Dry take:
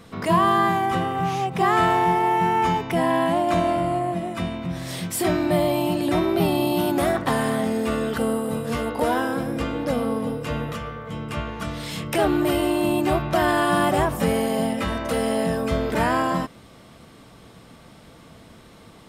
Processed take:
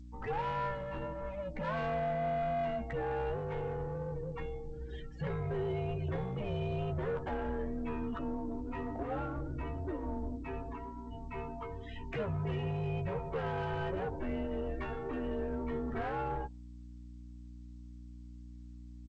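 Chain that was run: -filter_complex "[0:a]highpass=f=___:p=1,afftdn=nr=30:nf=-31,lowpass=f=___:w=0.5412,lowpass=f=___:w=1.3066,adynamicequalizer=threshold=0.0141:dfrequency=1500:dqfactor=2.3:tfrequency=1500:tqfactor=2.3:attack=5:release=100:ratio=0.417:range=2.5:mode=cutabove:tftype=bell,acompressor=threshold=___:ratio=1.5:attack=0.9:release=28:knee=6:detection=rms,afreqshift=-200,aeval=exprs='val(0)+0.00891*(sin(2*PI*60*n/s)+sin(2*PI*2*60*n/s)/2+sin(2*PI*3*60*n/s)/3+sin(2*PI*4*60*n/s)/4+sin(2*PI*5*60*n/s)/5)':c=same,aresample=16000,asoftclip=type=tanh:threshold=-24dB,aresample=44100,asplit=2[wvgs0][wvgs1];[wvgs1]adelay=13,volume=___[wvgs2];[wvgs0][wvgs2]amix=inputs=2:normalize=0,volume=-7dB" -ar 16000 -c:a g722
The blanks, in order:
270, 3000, 3000, -30dB, -7dB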